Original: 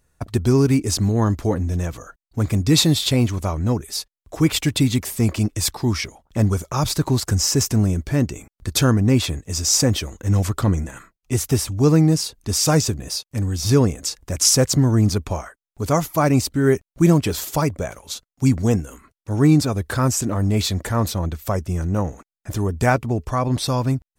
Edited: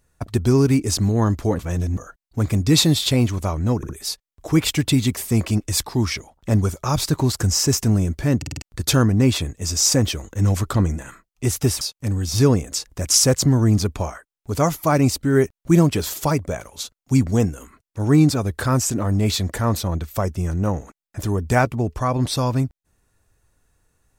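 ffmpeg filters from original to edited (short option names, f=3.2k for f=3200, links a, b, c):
-filter_complex "[0:a]asplit=11[a][b][c][d][e][f][g][h][i][j][k];[a]atrim=end=1.592[l];[b]atrim=start=1.588:end=1.972,asetpts=PTS-STARTPTS,areverse[m];[c]atrim=start=1.968:end=3.832[n];[d]atrim=start=3.768:end=3.832[o];[e]atrim=start=3.768:end=8.302[p];[f]atrim=start=8.248:end=8.302[q];[g]atrim=start=8.248:end=8.302[r];[h]atrim=start=8.248:end=8.302[s];[i]atrim=start=8.248:end=8.302[t];[j]atrim=start=8.498:end=11.692[u];[k]atrim=start=13.118[v];[l][m]acrossfade=d=0.004:c1=hsin:c2=hsin[w];[w][n]acrossfade=d=0.004:c1=hsin:c2=hsin[x];[x][o]acrossfade=d=0.004:c1=hsin:c2=hsin[y];[y][p]acrossfade=d=0.004:c1=hsin:c2=hsin[z];[z][q]acrossfade=d=0.004:c1=hsin:c2=hsin[aa];[aa][r]acrossfade=d=0.004:c1=hsin:c2=hsin[ab];[ab][s]acrossfade=d=0.004:c1=hsin:c2=hsin[ac];[ac][t]acrossfade=d=0.004:c1=hsin:c2=hsin[ad];[ad][u]acrossfade=d=0.004:c1=hsin:c2=hsin[ae];[ae][v]acrossfade=d=0.004:c1=hsin:c2=hsin"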